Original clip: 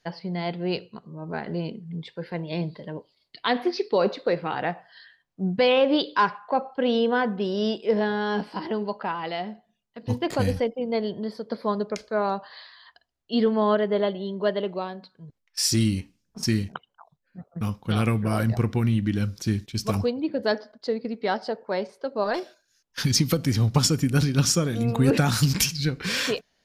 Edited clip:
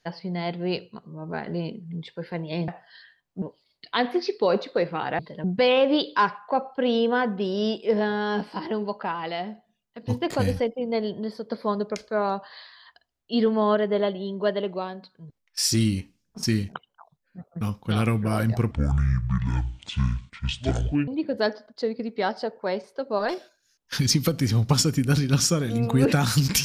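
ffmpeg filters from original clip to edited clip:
-filter_complex "[0:a]asplit=7[s0][s1][s2][s3][s4][s5][s6];[s0]atrim=end=2.682[s7];[s1]atrim=start=4.698:end=5.442[s8];[s2]atrim=start=2.928:end=4.702[s9];[s3]atrim=start=2.678:end=2.932[s10];[s4]atrim=start=5.438:end=18.714[s11];[s5]atrim=start=18.71:end=20.13,asetpts=PTS-STARTPTS,asetrate=26460,aresample=44100[s12];[s6]atrim=start=20.126[s13];[s7][s8]acrossfade=d=0.004:c1=hsin:c2=hsin[s14];[s14][s9]acrossfade=d=0.004:c1=hsin:c2=hsin[s15];[s15][s10]acrossfade=d=0.004:c1=hsin:c2=hsin[s16];[s16][s11]acrossfade=d=0.004:c1=hsin:c2=hsin[s17];[s17][s12]acrossfade=d=0.004:c1=hsin:c2=hsin[s18];[s18][s13]acrossfade=d=0.004:c1=hsin:c2=hsin"

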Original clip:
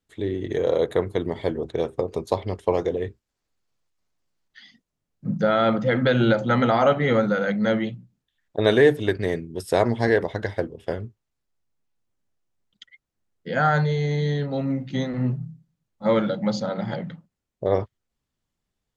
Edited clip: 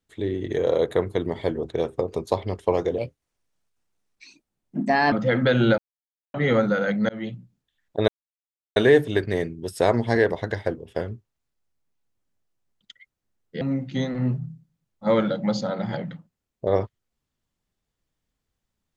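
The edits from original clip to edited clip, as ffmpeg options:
-filter_complex "[0:a]asplit=8[s0][s1][s2][s3][s4][s5][s6][s7];[s0]atrim=end=2.984[s8];[s1]atrim=start=2.98:end=5.72,asetpts=PTS-STARTPTS,asetrate=56448,aresample=44100[s9];[s2]atrim=start=5.716:end=6.38,asetpts=PTS-STARTPTS,afade=t=out:st=0.66:d=0.004:c=hsin[s10];[s3]atrim=start=6.38:end=6.94,asetpts=PTS-STARTPTS,volume=0[s11];[s4]atrim=start=6.94:end=7.69,asetpts=PTS-STARTPTS,afade=t=in:d=0.004:c=hsin,afade=t=out:st=0.746:d=0.004:c=hsin[s12];[s5]atrim=start=7.69:end=8.68,asetpts=PTS-STARTPTS,afade=t=in:d=0.25,afade=t=out:st=0.986:d=0.004:c=hsin,apad=pad_dur=0.68[s13];[s6]atrim=start=8.68:end=13.532,asetpts=PTS-STARTPTS,afade=t=in:d=0.004:c=hsin[s14];[s7]atrim=start=14.598[s15];[s8][s9]acrossfade=d=0.004:c1=hsin:c2=hsin[s16];[s10][s11][s12][s13][s14]concat=n=5:v=0:a=1[s17];[s16][s17]acrossfade=d=0.004:c1=hsin:c2=hsin[s18];[s18][s15]acrossfade=d=0.004:c1=hsin:c2=hsin"

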